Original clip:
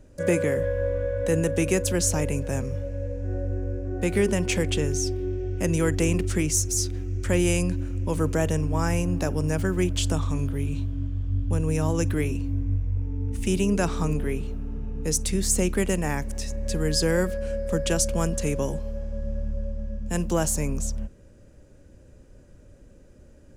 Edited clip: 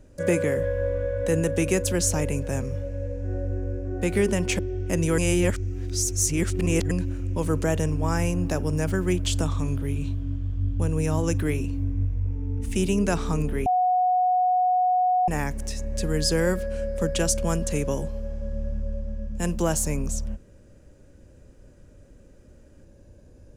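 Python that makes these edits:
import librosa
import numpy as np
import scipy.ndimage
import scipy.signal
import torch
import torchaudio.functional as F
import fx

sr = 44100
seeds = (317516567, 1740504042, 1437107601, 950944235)

y = fx.edit(x, sr, fx.cut(start_s=4.59, length_s=0.71),
    fx.reverse_span(start_s=5.89, length_s=1.73),
    fx.bleep(start_s=14.37, length_s=1.62, hz=732.0, db=-18.0), tone=tone)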